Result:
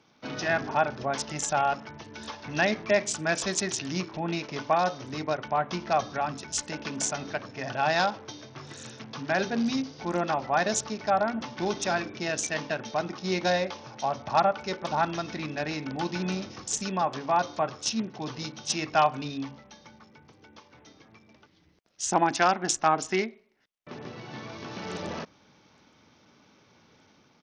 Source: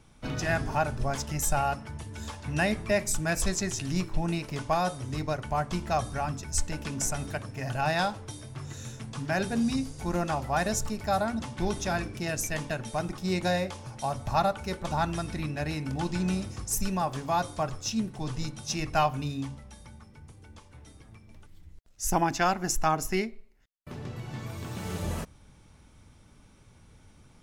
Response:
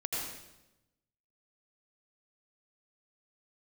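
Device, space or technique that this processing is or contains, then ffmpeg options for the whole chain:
Bluetooth headset: -af "highpass=240,dynaudnorm=f=110:g=7:m=3dB,aresample=16000,aresample=44100" -ar 48000 -c:a sbc -b:a 64k

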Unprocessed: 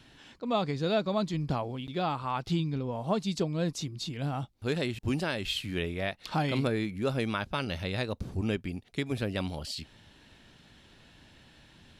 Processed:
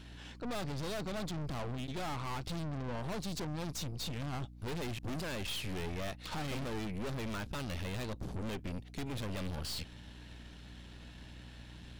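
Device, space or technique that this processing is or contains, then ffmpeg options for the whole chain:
valve amplifier with mains hum: -af "aeval=exprs='(tanh(141*val(0)+0.75)-tanh(0.75))/141':c=same,aeval=exprs='val(0)+0.00158*(sin(2*PI*60*n/s)+sin(2*PI*2*60*n/s)/2+sin(2*PI*3*60*n/s)/3+sin(2*PI*4*60*n/s)/4+sin(2*PI*5*60*n/s)/5)':c=same,volume=5.5dB"

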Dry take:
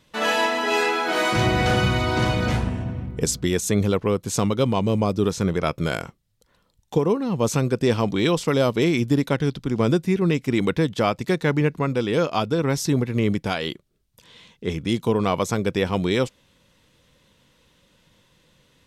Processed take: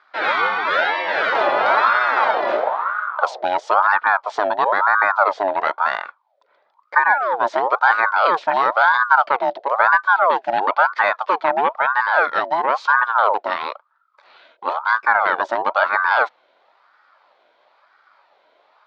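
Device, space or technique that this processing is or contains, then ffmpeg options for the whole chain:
voice changer toy: -af "aeval=exprs='val(0)*sin(2*PI*910*n/s+910*0.5/1*sin(2*PI*1*n/s))':c=same,highpass=580,equalizer=f=590:t=q:w=4:g=6,equalizer=f=900:t=q:w=4:g=4,equalizer=f=1.4k:t=q:w=4:g=5,equalizer=f=2.8k:t=q:w=4:g=-8,lowpass=f=3.6k:w=0.5412,lowpass=f=3.6k:w=1.3066,volume=5dB"

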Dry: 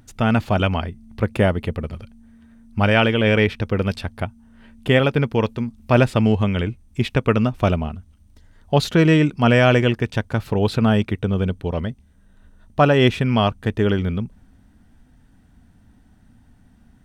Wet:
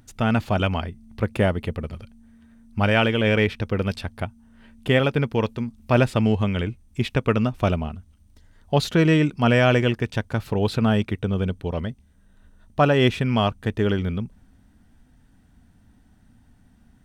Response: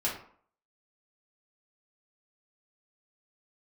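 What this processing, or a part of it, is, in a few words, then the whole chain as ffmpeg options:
exciter from parts: -filter_complex "[0:a]asplit=2[a][b];[b]highpass=f=3.4k:p=1,asoftclip=type=tanh:threshold=-32dB,volume=-10dB[c];[a][c]amix=inputs=2:normalize=0,volume=-3dB"

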